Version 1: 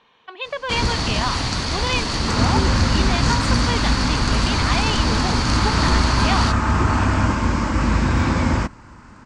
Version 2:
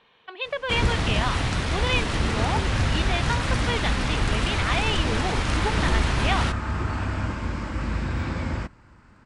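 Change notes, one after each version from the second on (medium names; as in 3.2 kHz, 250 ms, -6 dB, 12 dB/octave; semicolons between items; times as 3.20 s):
first sound: add peaking EQ 4.5 kHz -13.5 dB 0.26 oct; second sound -8.0 dB; master: add fifteen-band graphic EQ 250 Hz -4 dB, 1 kHz -5 dB, 6.3 kHz -8 dB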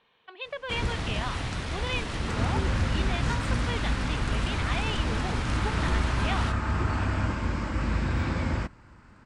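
speech -7.0 dB; first sound -7.0 dB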